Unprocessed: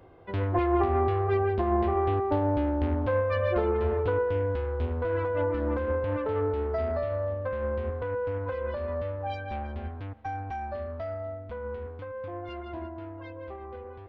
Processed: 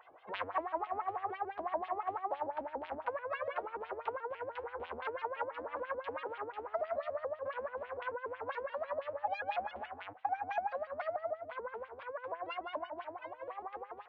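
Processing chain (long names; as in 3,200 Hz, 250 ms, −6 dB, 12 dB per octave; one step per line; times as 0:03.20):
auto-filter band-pass sine 6 Hz 260–3,400 Hz
downward compressor 6 to 1, threshold −40 dBFS, peak gain reduction 14 dB
low shelf with overshoot 500 Hz −13 dB, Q 1.5
pitch modulation by a square or saw wave saw up 6.9 Hz, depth 160 cents
level +8 dB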